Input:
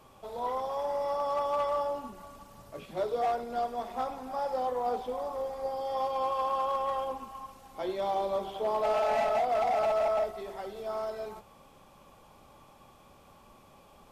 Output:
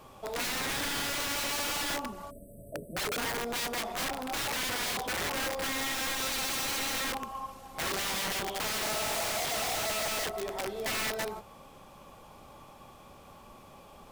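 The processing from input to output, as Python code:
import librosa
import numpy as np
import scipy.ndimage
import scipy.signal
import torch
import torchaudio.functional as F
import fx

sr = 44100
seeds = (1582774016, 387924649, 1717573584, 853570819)

y = fx.quant_companded(x, sr, bits=8)
y = fx.spec_erase(y, sr, start_s=2.31, length_s=1.06, low_hz=700.0, high_hz=7900.0)
y = (np.mod(10.0 ** (32.5 / 20.0) * y + 1.0, 2.0) - 1.0) / 10.0 ** (32.5 / 20.0)
y = F.gain(torch.from_numpy(y), 4.5).numpy()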